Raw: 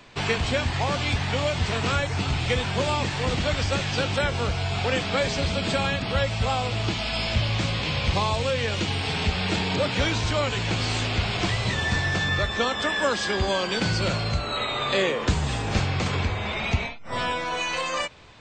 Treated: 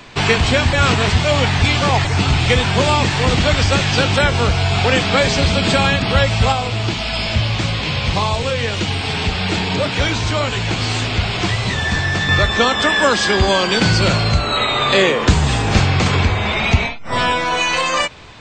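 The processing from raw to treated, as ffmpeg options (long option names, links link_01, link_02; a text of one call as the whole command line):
ffmpeg -i in.wav -filter_complex "[0:a]asettb=1/sr,asplit=3[link_01][link_02][link_03];[link_01]atrim=end=6.524[link_04];[link_02]atrim=start=6.52:end=12.29,asetpts=PTS-STARTPTS,afade=type=in:duration=0.004:curve=qsin,afade=type=out:start_time=5.766:duration=0.004:curve=qsin,flanger=delay=1.3:depth=8.4:regen=-62:speed=1.7:shape=sinusoidal[link_05];[link_03]atrim=start=12.286[link_06];[link_04][link_05]acrossfade=duration=0.004:curve1=hsin:curve2=qsin[link_07];[link_07][link_06]acrossfade=duration=0.004:curve1=qsin:curve2=hsin,asplit=3[link_08][link_09][link_10];[link_08]atrim=end=0.732[link_11];[link_09]atrim=start=0.728:end=2.052,asetpts=PTS-STARTPTS,areverse[link_12];[link_10]atrim=start=2.048[link_13];[link_11][link_12]acrossfade=duration=0.004:curve1=hsin:curve2=hsin[link_14];[link_14][link_13]acrossfade=duration=0.004:curve1=hsin:curve2=hsin,equalizer=frequency=540:width=4:gain=-2.5,acontrast=50,volume=4.5dB" out.wav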